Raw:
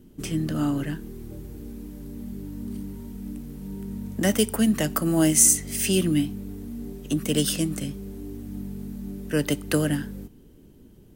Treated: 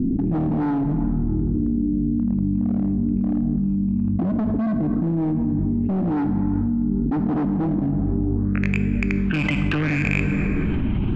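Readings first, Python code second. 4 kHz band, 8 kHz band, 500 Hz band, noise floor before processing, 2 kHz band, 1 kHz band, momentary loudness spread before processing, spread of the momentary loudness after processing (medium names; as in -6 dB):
no reading, under -30 dB, -1.5 dB, -51 dBFS, +6.5 dB, +5.5 dB, 17 LU, 1 LU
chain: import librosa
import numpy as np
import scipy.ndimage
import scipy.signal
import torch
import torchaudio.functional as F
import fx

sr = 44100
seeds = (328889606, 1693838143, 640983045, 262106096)

y = fx.rattle_buzz(x, sr, strikes_db=-31.0, level_db=-18.0)
y = fx.rider(y, sr, range_db=3, speed_s=2.0)
y = fx.phaser_stages(y, sr, stages=6, low_hz=450.0, high_hz=1200.0, hz=0.71, feedback_pct=0)
y = fx.filter_sweep_lowpass(y, sr, from_hz=270.0, to_hz=2300.0, start_s=8.02, end_s=8.74, q=3.4)
y = np.clip(y, -10.0 ** (-21.0 / 20.0), 10.0 ** (-21.0 / 20.0))
y = fx.spacing_loss(y, sr, db_at_10k=25)
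y = fx.rev_plate(y, sr, seeds[0], rt60_s=1.6, hf_ratio=0.6, predelay_ms=0, drr_db=10.5)
y = fx.env_flatten(y, sr, amount_pct=100)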